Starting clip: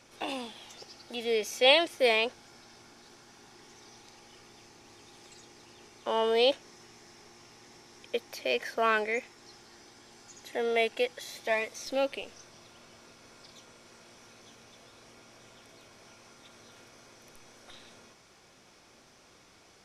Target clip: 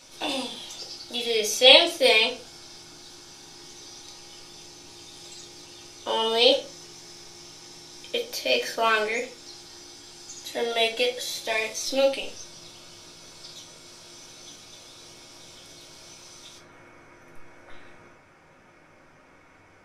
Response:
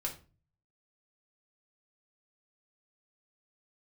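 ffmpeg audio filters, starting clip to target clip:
-filter_complex "[0:a]asetnsamples=nb_out_samples=441:pad=0,asendcmd='16.58 highshelf g -10',highshelf=frequency=2800:width_type=q:width=1.5:gain=6.5[link_01];[1:a]atrim=start_sample=2205[link_02];[link_01][link_02]afir=irnorm=-1:irlink=0,volume=3.5dB"

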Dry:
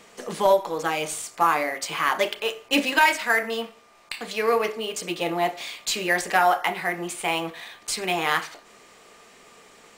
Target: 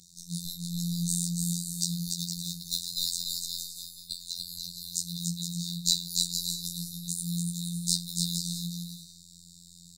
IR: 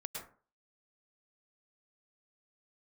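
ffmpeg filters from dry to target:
-af "afftfilt=real='re*(1-between(b*sr/4096,170,3600))':imag='im*(1-between(b*sr/4096,170,3600))':win_size=4096:overlap=0.75,afftfilt=real='hypot(re,im)*cos(PI*b)':imag='0':win_size=2048:overlap=0.75,equalizer=frequency=170:width_type=o:width=0.66:gain=8.5,aecho=1:1:290|464|568.4|631|668.6:0.631|0.398|0.251|0.158|0.1,volume=5dB"

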